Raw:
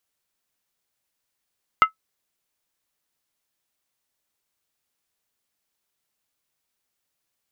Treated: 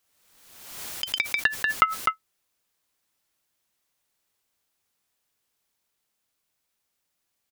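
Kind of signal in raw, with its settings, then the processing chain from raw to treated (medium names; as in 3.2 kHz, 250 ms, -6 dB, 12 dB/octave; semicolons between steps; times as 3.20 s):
skin hit, lowest mode 1.3 kHz, decay 0.11 s, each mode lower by 8.5 dB, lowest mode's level -6 dB
delay 253 ms -5 dB; ever faster or slower copies 89 ms, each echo +5 st, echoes 3; swell ahead of each attack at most 47 dB/s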